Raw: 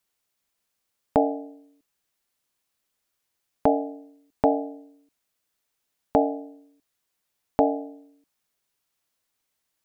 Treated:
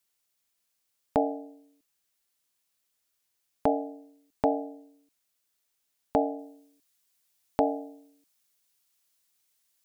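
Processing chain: treble shelf 2.6 kHz +7 dB, from 6.39 s +12 dB; trim -5 dB

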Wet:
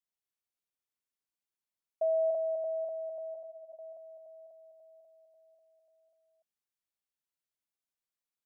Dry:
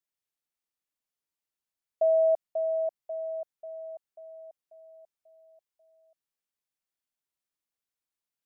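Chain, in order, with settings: on a send: delay 292 ms -4 dB; 3.34–3.79 s: on the sum: three-phase chorus; trim -6 dB

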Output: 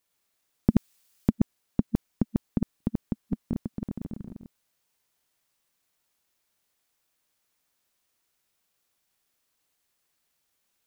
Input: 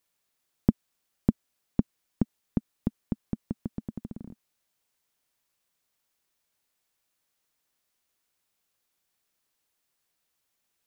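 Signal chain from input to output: chunks repeated in reverse 104 ms, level -1 dB; 0.70–1.30 s: treble shelf 2 kHz +10.5 dB

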